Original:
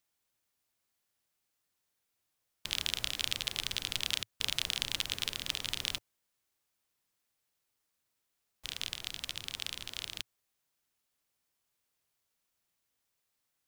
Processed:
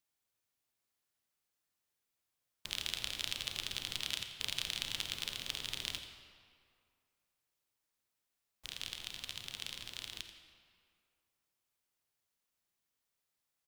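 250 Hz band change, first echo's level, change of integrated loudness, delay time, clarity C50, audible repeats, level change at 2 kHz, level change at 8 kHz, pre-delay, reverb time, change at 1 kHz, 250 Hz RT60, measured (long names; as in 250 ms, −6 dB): −4.0 dB, −12.5 dB, −4.5 dB, 85 ms, 6.5 dB, 1, −4.0 dB, −4.5 dB, 33 ms, 2.2 s, −4.0 dB, 2.0 s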